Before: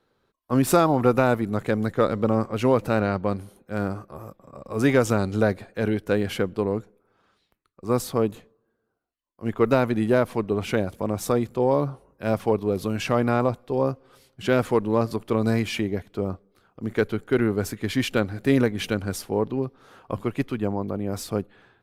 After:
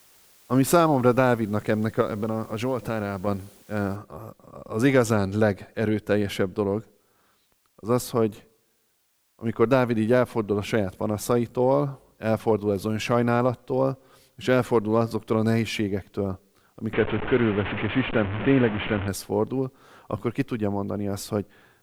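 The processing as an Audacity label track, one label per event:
2.010000	3.270000	compressor 2.5:1, threshold -24 dBFS
3.960000	3.960000	noise floor step -56 dB -69 dB
16.930000	19.080000	delta modulation 16 kbps, step -23 dBFS

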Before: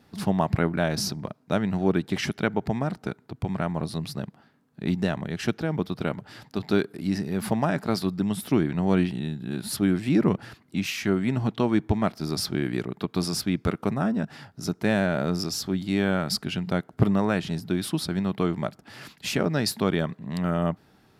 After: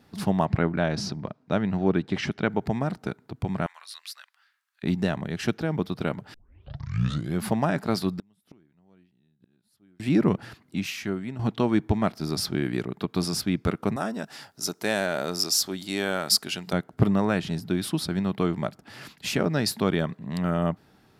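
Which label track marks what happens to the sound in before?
0.450000	2.490000	air absorption 91 m
3.660000	4.830000	HPF 1400 Hz 24 dB/oct
6.340000	6.340000	tape start 1.10 s
8.190000	10.000000	flipped gate shuts at -25 dBFS, range -37 dB
10.610000	11.390000	fade out, to -12 dB
13.960000	16.730000	tone controls bass -13 dB, treble +10 dB

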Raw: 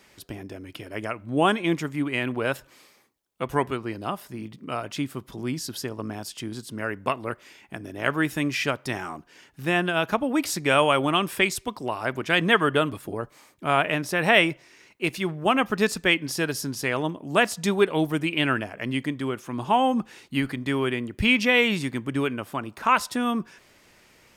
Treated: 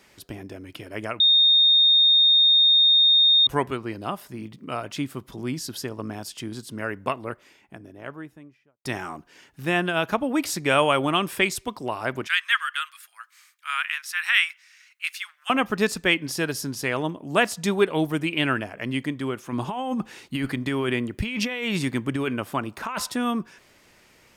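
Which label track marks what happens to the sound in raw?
1.200000	3.470000	bleep 3680 Hz -13.5 dBFS
6.780000	8.850000	studio fade out
12.270000	15.500000	steep high-pass 1300 Hz
19.520000	23.120000	negative-ratio compressor -26 dBFS

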